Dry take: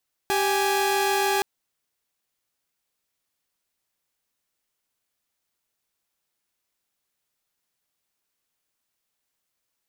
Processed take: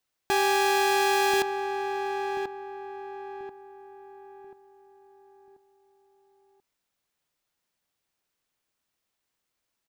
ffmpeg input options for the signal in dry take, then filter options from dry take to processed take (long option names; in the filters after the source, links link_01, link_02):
-f lavfi -i "aevalsrc='0.0891*((2*mod(392*t,1)-1)+(2*mod(830.61*t,1)-1))':duration=1.12:sample_rate=44100"
-filter_complex "[0:a]equalizer=frequency=14000:width=0.4:gain=-5.5,asplit=2[link_01][link_02];[link_02]adelay=1036,lowpass=frequency=1200:poles=1,volume=-5dB,asplit=2[link_03][link_04];[link_04]adelay=1036,lowpass=frequency=1200:poles=1,volume=0.42,asplit=2[link_05][link_06];[link_06]adelay=1036,lowpass=frequency=1200:poles=1,volume=0.42,asplit=2[link_07][link_08];[link_08]adelay=1036,lowpass=frequency=1200:poles=1,volume=0.42,asplit=2[link_09][link_10];[link_10]adelay=1036,lowpass=frequency=1200:poles=1,volume=0.42[link_11];[link_03][link_05][link_07][link_09][link_11]amix=inputs=5:normalize=0[link_12];[link_01][link_12]amix=inputs=2:normalize=0"